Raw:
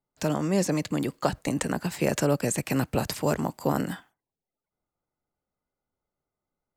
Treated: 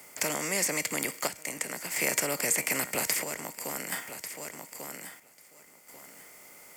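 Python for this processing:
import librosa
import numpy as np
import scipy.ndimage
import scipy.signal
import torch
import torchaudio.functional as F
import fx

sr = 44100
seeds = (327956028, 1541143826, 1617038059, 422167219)

y = fx.bin_compress(x, sr, power=0.6)
y = fx.peak_eq(y, sr, hz=2100.0, db=14.5, octaves=0.31)
y = fx.comb_fb(y, sr, f0_hz=470.0, decay_s=0.45, harmonics='all', damping=0.0, mix_pct=60)
y = fx.echo_feedback(y, sr, ms=1143, feedback_pct=16, wet_db=-16.0)
y = fx.chopper(y, sr, hz=0.51, depth_pct=60, duty_pct=65)
y = fx.riaa(y, sr, side='recording')
y = fx.notch(y, sr, hz=3900.0, q=7.7)
y = fx.band_squash(y, sr, depth_pct=40)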